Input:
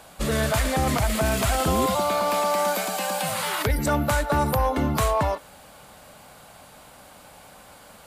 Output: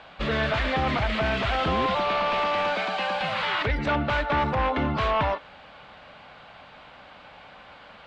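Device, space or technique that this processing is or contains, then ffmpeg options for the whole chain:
synthesiser wavefolder: -af "tiltshelf=f=940:g=-4.5,aeval=exprs='0.106*(abs(mod(val(0)/0.106+3,4)-2)-1)':c=same,lowpass=f=3.4k:w=0.5412,lowpass=f=3.4k:w=1.3066,volume=1.5dB"

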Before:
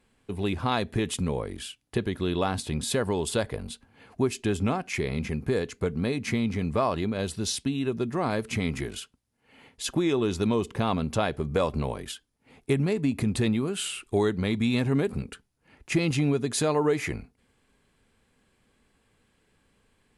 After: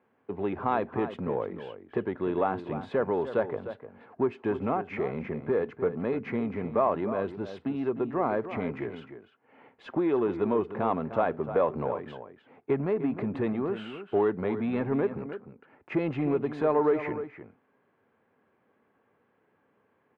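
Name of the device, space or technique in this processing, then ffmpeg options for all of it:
parallel distortion: -filter_complex "[0:a]highpass=f=94:w=0.5412,highpass=f=94:w=1.3066,asplit=2[a][b];[b]asoftclip=type=hard:threshold=-27.5dB,volume=-5.5dB[c];[a][c]amix=inputs=2:normalize=0,lowpass=1.4k,bass=f=250:g=-12,treble=f=4k:g=-14,asplit=2[d][e];[e]adelay=303.2,volume=-11dB,highshelf=f=4k:g=-6.82[f];[d][f]amix=inputs=2:normalize=0"

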